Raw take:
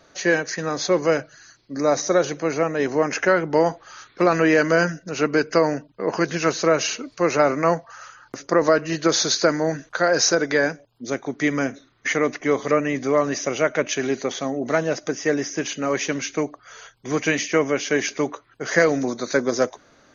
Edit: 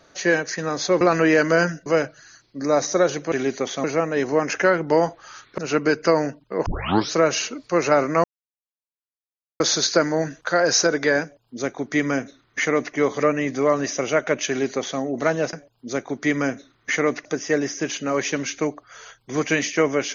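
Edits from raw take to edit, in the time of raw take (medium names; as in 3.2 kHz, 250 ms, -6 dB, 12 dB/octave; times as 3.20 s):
4.21–5.06 s: move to 1.01 s
6.14 s: tape start 0.46 s
7.72–9.08 s: mute
10.70–12.42 s: copy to 15.01 s
13.96–14.48 s: copy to 2.47 s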